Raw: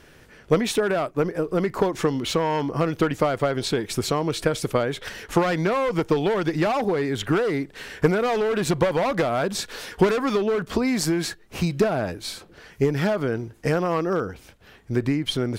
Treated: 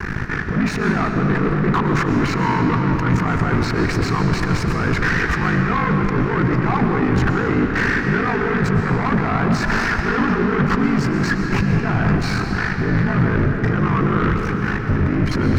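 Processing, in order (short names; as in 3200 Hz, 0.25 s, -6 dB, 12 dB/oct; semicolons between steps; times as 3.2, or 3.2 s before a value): bell 170 Hz +6 dB 0.22 oct; negative-ratio compressor -31 dBFS, ratio -1; ring modulator 26 Hz; sample leveller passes 5; transient shaper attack +3 dB, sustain -8 dB; fixed phaser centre 1400 Hz, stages 4; sample leveller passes 3; air absorption 220 m; reverb RT60 4.6 s, pre-delay 80 ms, DRR 3 dB; gain -3.5 dB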